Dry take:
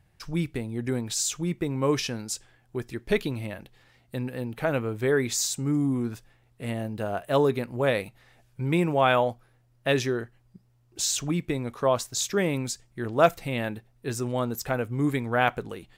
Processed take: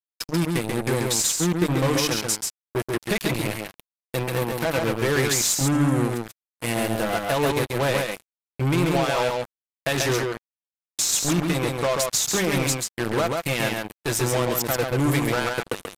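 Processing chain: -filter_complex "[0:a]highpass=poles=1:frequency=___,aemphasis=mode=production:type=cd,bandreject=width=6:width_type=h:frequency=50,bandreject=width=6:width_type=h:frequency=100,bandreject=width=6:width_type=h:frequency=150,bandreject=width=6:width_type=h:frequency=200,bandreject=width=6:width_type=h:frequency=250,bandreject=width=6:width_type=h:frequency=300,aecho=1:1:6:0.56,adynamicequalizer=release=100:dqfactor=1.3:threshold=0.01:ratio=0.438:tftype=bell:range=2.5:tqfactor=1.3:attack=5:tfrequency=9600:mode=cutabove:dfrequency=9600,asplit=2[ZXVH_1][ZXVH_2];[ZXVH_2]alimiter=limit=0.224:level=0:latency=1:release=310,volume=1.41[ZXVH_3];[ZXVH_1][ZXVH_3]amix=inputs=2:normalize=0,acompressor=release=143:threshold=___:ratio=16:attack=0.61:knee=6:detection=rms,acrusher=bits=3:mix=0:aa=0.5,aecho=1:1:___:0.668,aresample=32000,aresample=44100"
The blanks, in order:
71, 0.158, 136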